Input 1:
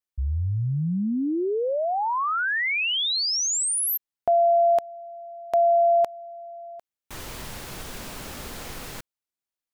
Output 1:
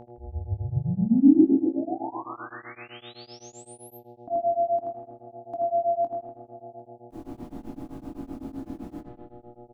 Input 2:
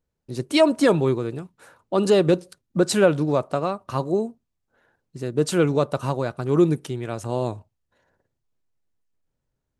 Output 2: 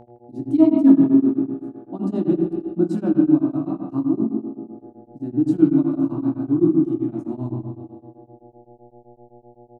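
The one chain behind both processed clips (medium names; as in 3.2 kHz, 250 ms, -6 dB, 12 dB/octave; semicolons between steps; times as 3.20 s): FFT filter 160 Hz 0 dB, 310 Hz +15 dB, 470 Hz -27 dB, 680 Hz -8 dB, 2 kHz -25 dB; spring tank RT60 1.7 s, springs 40/48 ms, chirp 50 ms, DRR 1.5 dB; mains buzz 120 Hz, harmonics 7, -41 dBFS -4 dB/octave; bass shelf 250 Hz -10 dB; doubling 22 ms -6.5 dB; on a send: filtered feedback delay 81 ms, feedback 69%, low-pass 3.1 kHz, level -5 dB; on the sum: tremolo of two beating tones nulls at 7.8 Hz; trim +1.5 dB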